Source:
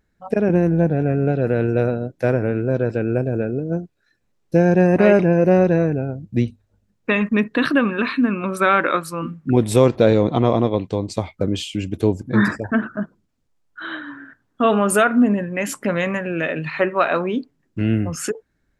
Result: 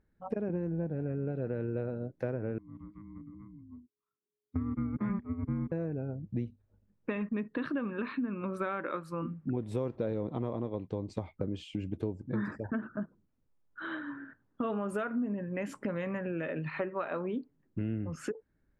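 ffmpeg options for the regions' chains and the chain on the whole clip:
-filter_complex "[0:a]asettb=1/sr,asplit=3[s0][s1][s2];[s0]atrim=end=2.584[s3];[s1]atrim=start=2.58:end=5.72,asetpts=PTS-STARTPTS,afade=t=in:d=0.004:c=qsin,afade=t=out:st=3.136:d=0.004:c=qsin,agate=range=0.1:threshold=0.178:ratio=16:release=100:detection=peak,afreqshift=-420,highpass=110,lowpass=2900[s4];[s2]atrim=start=5.716[s5];[s3][s4]acrossfade=d=0.004:c1=hsin:c2=qsin[s6];[s6][s5]acrossfade=d=0.004:c1=qsin:c2=hsin,lowpass=f=1100:p=1,bandreject=f=700:w=12,acompressor=threshold=0.0398:ratio=4,volume=0.596"

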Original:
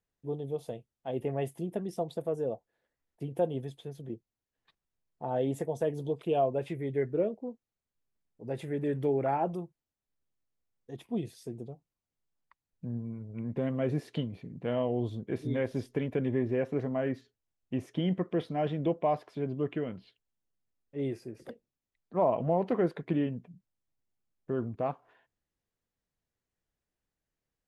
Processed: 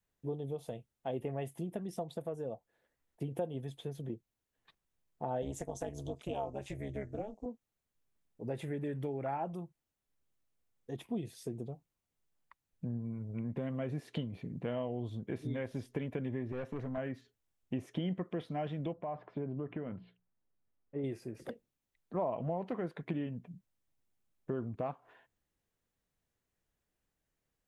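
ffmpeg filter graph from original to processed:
-filter_complex "[0:a]asettb=1/sr,asplit=3[s0][s1][s2];[s0]atrim=end=5.424[s3];[s1]atrim=start=5.42:end=7.46,asetpts=PTS-STARTPTS,afade=t=in:d=0.004:c=qsin,afade=t=out:st=2.036:d=0.004:c=qsin,equalizer=f=6500:w=1.3:g=14.5,tremolo=f=210:d=0.889[s4];[s2]atrim=start=7.456[s5];[s3][s4]acrossfade=d=0.004:c1=hsin:c2=qsin[s6];[s6][s5]acrossfade=d=0.004:c1=qsin:c2=hsin,asettb=1/sr,asplit=3[s7][s8][s9];[s7]atrim=end=16.524[s10];[s8]atrim=start=16.52:end=16.98,asetpts=PTS-STARTPTS,afade=t=in:d=0.004:c=qsin,afade=t=out:st=0.456:d=0.004:c=qsin,highpass=f=53:w=0.5412,highpass=f=53:w=1.3066,aeval=exprs='(tanh(22.4*val(0)+0.3)-tanh(0.3))/22.4':c=same[s11];[s9]atrim=start=16.976[s12];[s10][s11]acrossfade=d=0.004:c1=hsin:c2=qsin[s13];[s13][s12]acrossfade=d=0.004:c1=qsin:c2=hsin,asettb=1/sr,asplit=3[s14][s15][s16];[s14]atrim=end=18.934[s17];[s15]atrim=start=18.93:end=21.04,asetpts=PTS-STARTPTS,afade=t=in:d=0.004:c=qsin,afade=t=out:st=2.106:d=0.004:c=qsin,lowpass=1700,bandreject=f=60:t=h:w=6,bandreject=f=120:t=h:w=6,bandreject=f=180:t=h:w=6,acompressor=threshold=0.0224:ratio=2.5:attack=3.2:release=140:knee=1:detection=peak[s18];[s16]atrim=start=21.036[s19];[s17][s18]acrossfade=d=0.004:c1=hsin:c2=qsin[s20];[s20][s19]acrossfade=d=0.004:c1=qsin:c2=hsin,equalizer=f=4800:t=o:w=0.45:g=-3,acompressor=threshold=0.0112:ratio=2.5,adynamicequalizer=threshold=0.00282:dfrequency=400:dqfactor=1.4:tfrequency=400:tqfactor=1.4:attack=5:release=100:ratio=0.375:range=3:mode=cutabove:tftype=bell,volume=1.41"

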